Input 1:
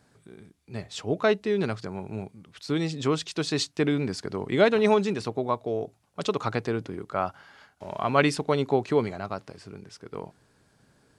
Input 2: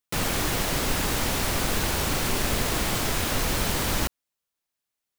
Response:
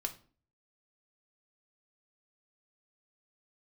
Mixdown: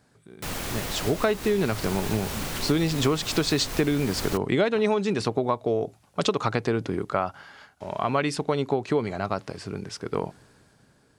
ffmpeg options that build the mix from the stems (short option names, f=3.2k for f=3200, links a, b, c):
-filter_complex "[0:a]dynaudnorm=f=150:g=13:m=14dB,volume=0dB[a];[1:a]adelay=300,volume=-6dB[b];[a][b]amix=inputs=2:normalize=0,acompressor=threshold=-20dB:ratio=6"